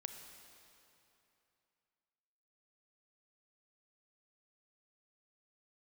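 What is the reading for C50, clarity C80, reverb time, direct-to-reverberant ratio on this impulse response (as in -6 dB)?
6.0 dB, 7.0 dB, 2.9 s, 5.5 dB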